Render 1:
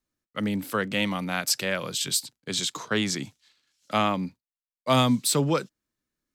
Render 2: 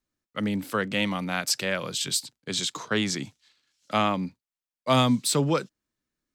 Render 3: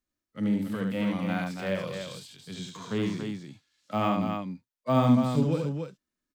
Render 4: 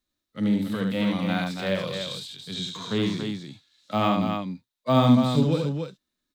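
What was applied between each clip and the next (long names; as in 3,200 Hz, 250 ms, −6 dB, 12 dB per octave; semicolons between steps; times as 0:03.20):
parametric band 13,000 Hz −5.5 dB 0.67 octaves
de-essing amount 90%; harmonic and percussive parts rebalanced percussive −16 dB; on a send: loudspeakers that aren't time-aligned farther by 25 metres −4 dB, 97 metres −6 dB
parametric band 3,800 Hz +12 dB 0.32 octaves; level +3.5 dB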